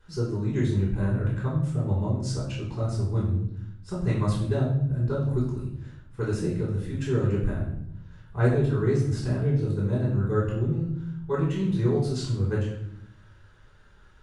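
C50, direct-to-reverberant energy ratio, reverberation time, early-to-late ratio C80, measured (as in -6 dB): 3.5 dB, -7.0 dB, 0.70 s, 7.5 dB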